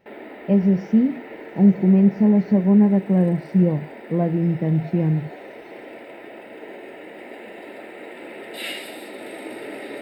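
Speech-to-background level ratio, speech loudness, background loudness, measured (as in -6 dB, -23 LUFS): 18.5 dB, -19.0 LUFS, -37.5 LUFS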